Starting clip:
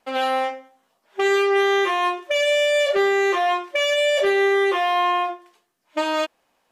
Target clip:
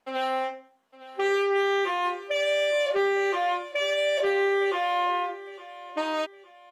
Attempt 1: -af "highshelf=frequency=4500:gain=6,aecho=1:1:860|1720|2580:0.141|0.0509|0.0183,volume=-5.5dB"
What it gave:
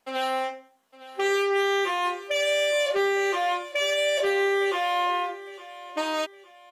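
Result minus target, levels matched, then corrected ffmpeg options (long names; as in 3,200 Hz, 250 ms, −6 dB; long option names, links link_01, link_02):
8,000 Hz band +6.5 dB
-af "highshelf=frequency=4500:gain=-4.5,aecho=1:1:860|1720|2580:0.141|0.0509|0.0183,volume=-5.5dB"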